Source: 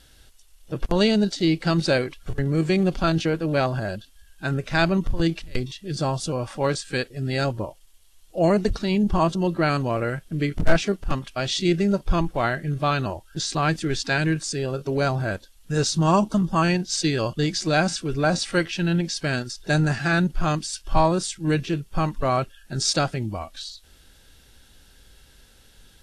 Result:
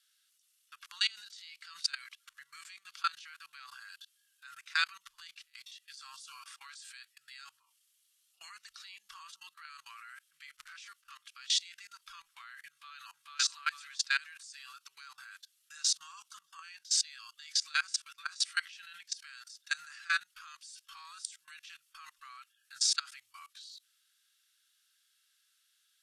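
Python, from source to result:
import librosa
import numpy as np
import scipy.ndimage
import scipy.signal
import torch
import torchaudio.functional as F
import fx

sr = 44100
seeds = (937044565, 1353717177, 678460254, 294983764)

y = fx.echo_throw(x, sr, start_s=12.69, length_s=0.7, ms=440, feedback_pct=25, wet_db=-0.5)
y = scipy.signal.sosfilt(scipy.signal.ellip(4, 1.0, 50, 1200.0, 'highpass', fs=sr, output='sos'), y)
y = fx.high_shelf(y, sr, hz=3100.0, db=7.5)
y = fx.level_steps(y, sr, step_db=23)
y = y * librosa.db_to_amplitude(-4.5)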